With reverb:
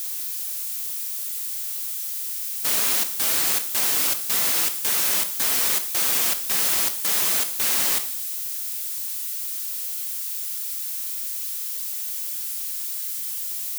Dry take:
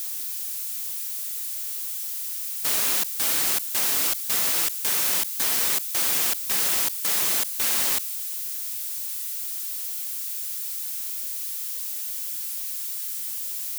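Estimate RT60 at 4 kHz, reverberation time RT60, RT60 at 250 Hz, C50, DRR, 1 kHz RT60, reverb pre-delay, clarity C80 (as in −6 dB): 0.55 s, 0.60 s, 0.65 s, 12.0 dB, 7.5 dB, 0.60 s, 7 ms, 15.5 dB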